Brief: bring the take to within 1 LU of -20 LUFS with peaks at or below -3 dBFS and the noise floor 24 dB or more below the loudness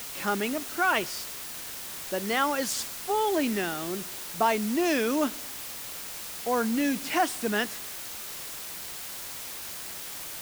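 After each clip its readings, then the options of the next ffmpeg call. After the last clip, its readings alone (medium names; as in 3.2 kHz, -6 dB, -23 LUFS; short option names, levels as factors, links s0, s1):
noise floor -39 dBFS; noise floor target -54 dBFS; loudness -29.5 LUFS; peak level -12.5 dBFS; loudness target -20.0 LUFS
-> -af "afftdn=nr=15:nf=-39"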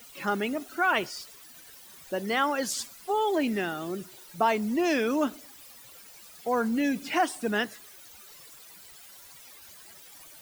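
noise floor -50 dBFS; noise floor target -53 dBFS
-> -af "afftdn=nr=6:nf=-50"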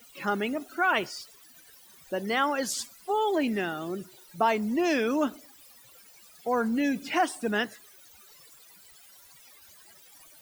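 noise floor -55 dBFS; loudness -28.5 LUFS; peak level -12.5 dBFS; loudness target -20.0 LUFS
-> -af "volume=2.66"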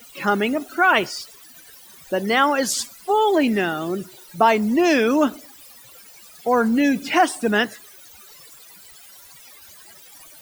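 loudness -20.0 LUFS; peak level -4.0 dBFS; noise floor -46 dBFS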